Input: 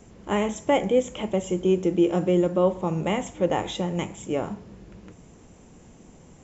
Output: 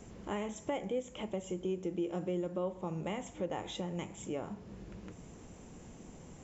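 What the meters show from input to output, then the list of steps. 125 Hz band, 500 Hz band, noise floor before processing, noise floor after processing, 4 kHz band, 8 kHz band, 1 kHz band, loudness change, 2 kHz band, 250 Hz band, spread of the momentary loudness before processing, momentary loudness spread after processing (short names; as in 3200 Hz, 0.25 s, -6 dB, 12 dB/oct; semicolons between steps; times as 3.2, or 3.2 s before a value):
-12.5 dB, -14.0 dB, -51 dBFS, -53 dBFS, -11.5 dB, n/a, -13.5 dB, -14.0 dB, -13.0 dB, -13.5 dB, 8 LU, 16 LU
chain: compressor 2:1, threshold -42 dBFS, peak gain reduction 14.5 dB; gain -1.5 dB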